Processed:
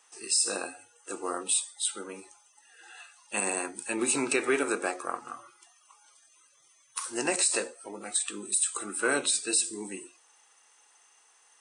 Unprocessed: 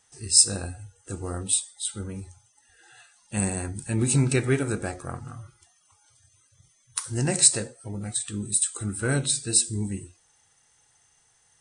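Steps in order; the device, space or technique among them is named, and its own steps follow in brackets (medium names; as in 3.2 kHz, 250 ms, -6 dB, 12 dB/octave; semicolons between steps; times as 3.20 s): laptop speaker (high-pass 310 Hz 24 dB/octave; peaking EQ 1.1 kHz +8 dB 0.57 oct; peaking EQ 2.6 kHz +7 dB 0.29 oct; peak limiter -16 dBFS, peak gain reduction 13.5 dB); trim +1 dB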